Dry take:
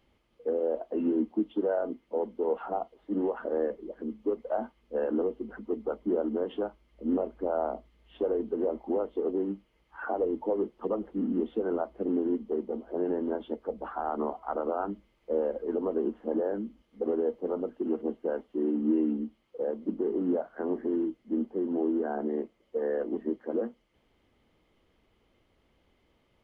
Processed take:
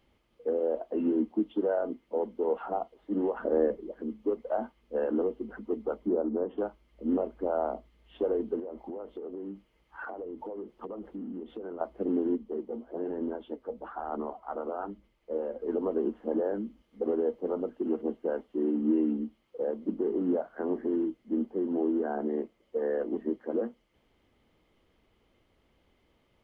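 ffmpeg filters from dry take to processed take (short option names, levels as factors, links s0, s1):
-filter_complex "[0:a]asettb=1/sr,asplit=3[s0][s1][s2];[s0]atrim=end=3.364[s3];[s1]atrim=start=3.36:end=3.81,asetpts=PTS-STARTPTS,afade=t=in:d=0.004:c=qsin,afade=t=out:st=0.446:d=0.004:c=qsin,lowshelf=f=470:g=7[s4];[s2]atrim=start=3.806[s5];[s3][s4]acrossfade=d=0.004:c1=hsin:c2=qsin[s6];[s6][s5]acrossfade=d=0.004:c1=qsin:c2=hsin,asettb=1/sr,asplit=3[s7][s8][s9];[s7]atrim=end=6.084[s10];[s8]atrim=start=6.08:end=6.58,asetpts=PTS-STARTPTS,afade=t=in:d=0.004:c=qsin,afade=t=out:st=0.496:d=0.004:c=qsin,lowpass=1200[s11];[s9]atrim=start=6.576[s12];[s10][s11]acrossfade=d=0.004:c1=hsin:c2=qsin[s13];[s13][s12]acrossfade=d=0.004:c1=qsin:c2=hsin,asettb=1/sr,asplit=3[s14][s15][s16];[s14]atrim=end=8.594[s17];[s15]atrim=start=8.59:end=11.81,asetpts=PTS-STARTPTS,afade=t=in:d=0.004:c=qsin,afade=t=out:st=3.216:d=0.004:c=qsin,acompressor=threshold=0.0178:ratio=10:attack=3.2:release=140:knee=1:detection=peak[s18];[s16]atrim=start=11.806[s19];[s17][s18]acrossfade=d=0.004:c1=hsin:c2=qsin[s20];[s20][s19]acrossfade=d=0.004:c1=qsin:c2=hsin,asettb=1/sr,asplit=3[s21][s22][s23];[s21]atrim=end=12.334[s24];[s22]atrim=start=12.33:end=15.62,asetpts=PTS-STARTPTS,afade=t=in:d=0.004:c=qsin,afade=t=out:st=3.286:d=0.004:c=qsin,flanger=delay=0:depth=8.6:regen=63:speed=1.1:shape=sinusoidal[s25];[s23]atrim=start=15.616[s26];[s24][s25]acrossfade=d=0.004:c1=hsin:c2=qsin[s27];[s27][s26]acrossfade=d=0.004:c1=qsin:c2=hsin"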